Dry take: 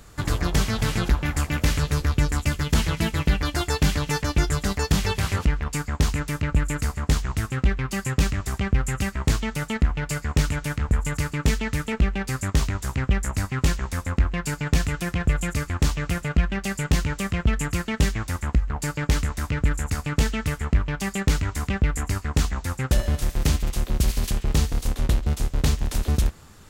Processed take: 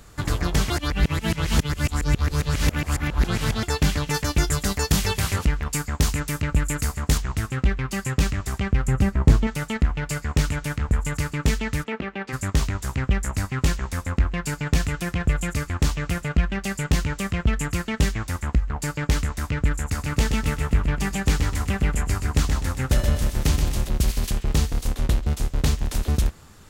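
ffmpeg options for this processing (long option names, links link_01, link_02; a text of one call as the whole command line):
ffmpeg -i in.wav -filter_complex "[0:a]asettb=1/sr,asplit=3[link_01][link_02][link_03];[link_01]atrim=end=4.144[link_04];[link_02]atrim=start=4.14:end=7.18,asetpts=PTS-STARTPTS,afade=type=in:duration=0.004:curve=qsin,afade=type=out:start_time=3.036:duration=0.004:curve=qsin,highshelf=frequency=6300:gain=9[link_05];[link_03]atrim=start=7.176[link_06];[link_04][link_05]acrossfade=duration=0.004:curve1=hsin:curve2=qsin[link_07];[link_07][link_06]acrossfade=duration=0.004:curve1=qsin:curve2=hsin,asettb=1/sr,asplit=3[link_08][link_09][link_10];[link_08]atrim=end=8.874[link_11];[link_09]atrim=start=8.87:end=9.47,asetpts=PTS-STARTPTS,afade=type=in:duration=0.004:curve=qsin,afade=type=out:start_time=0.596:duration=0.004:curve=qsin,tiltshelf=frequency=1200:gain=7[link_12];[link_10]atrim=start=9.466[link_13];[link_11][link_12]acrossfade=duration=0.004:curve1=hsin:curve2=qsin[link_14];[link_14][link_13]acrossfade=duration=0.004:curve1=qsin:curve2=hsin,asplit=3[link_15][link_16][link_17];[link_15]afade=type=out:start_time=11.83:duration=0.02[link_18];[link_16]highpass=240,lowpass=3100,afade=type=in:start_time=11.83:duration=0.02,afade=type=out:start_time=12.32:duration=0.02[link_19];[link_17]afade=type=in:start_time=12.32:duration=0.02[link_20];[link_18][link_19][link_20]amix=inputs=3:normalize=0,asettb=1/sr,asplit=3[link_21][link_22][link_23];[link_21]atrim=end=19.824[link_24];[link_22]atrim=start=19.82:end=23.89,asetpts=PTS-STARTPTS,afade=type=in:duration=0.004:curve=qsin,afade=type=out:start_time=4.066:duration=0.004:curve=qsin,aecho=1:1:126|252|378|504|630:0.501|0.216|0.0927|0.0398|0.0171,atrim=end_sample=179487[link_25];[link_23]atrim=start=23.886[link_26];[link_24][link_25]acrossfade=duration=0.004:curve1=hsin:curve2=qsin[link_27];[link_27][link_26]acrossfade=duration=0.004:curve1=qsin:curve2=hsin,asplit=3[link_28][link_29][link_30];[link_28]atrim=end=0.702[link_31];[link_29]atrim=start=0.698:end=3.632,asetpts=PTS-STARTPTS,areverse[link_32];[link_30]atrim=start=3.628[link_33];[link_31][link_32]acrossfade=duration=0.004:curve1=hsin:curve2=hsin[link_34];[link_34][link_33]acrossfade=duration=0.004:curve1=hsin:curve2=hsin" out.wav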